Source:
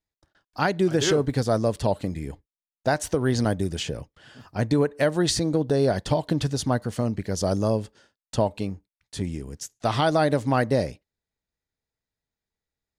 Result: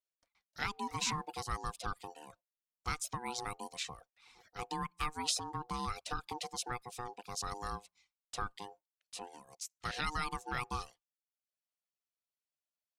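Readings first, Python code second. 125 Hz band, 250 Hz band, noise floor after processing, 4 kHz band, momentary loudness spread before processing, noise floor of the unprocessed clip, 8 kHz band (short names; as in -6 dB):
-21.5 dB, -23.0 dB, under -85 dBFS, -9.0 dB, 12 LU, under -85 dBFS, -7.5 dB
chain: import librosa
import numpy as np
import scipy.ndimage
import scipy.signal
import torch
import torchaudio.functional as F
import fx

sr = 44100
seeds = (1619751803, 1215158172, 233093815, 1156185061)

y = x * np.sin(2.0 * np.pi * 610.0 * np.arange(len(x)) / sr)
y = fx.dereverb_blind(y, sr, rt60_s=0.57)
y = fx.tone_stack(y, sr, knobs='5-5-5')
y = y * librosa.db_to_amplitude(2.0)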